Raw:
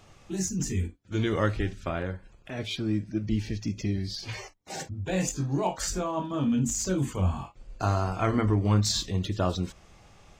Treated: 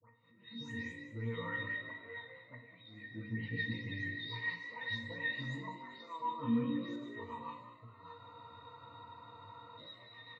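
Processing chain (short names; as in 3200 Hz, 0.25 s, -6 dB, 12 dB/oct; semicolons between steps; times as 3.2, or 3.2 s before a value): spectral delay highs late, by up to 0.276 s; HPF 490 Hz 6 dB/oct; band shelf 1900 Hz +16 dB 2.5 oct; reverse; compressor 8:1, threshold -32 dBFS, peak gain reduction 18 dB; reverse; auto swell 0.515 s; octave resonator A#, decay 0.28 s; rotary speaker horn 1.2 Hz, later 6.7 Hz, at 1.57; frequency-shifting echo 0.197 s, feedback 48%, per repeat +58 Hz, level -12 dB; reverb RT60 0.90 s, pre-delay 18 ms, DRR 5.5 dB; spectral freeze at 8.23, 1.55 s; gain +16 dB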